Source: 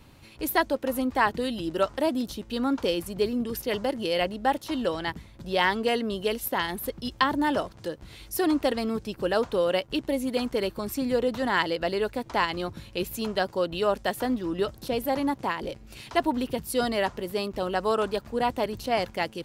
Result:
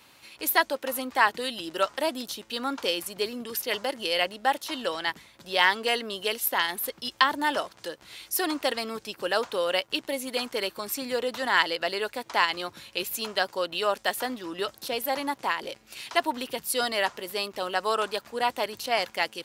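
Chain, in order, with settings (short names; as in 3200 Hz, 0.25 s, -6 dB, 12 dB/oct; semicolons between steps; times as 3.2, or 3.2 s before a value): HPF 1300 Hz 6 dB/oct; gain +5.5 dB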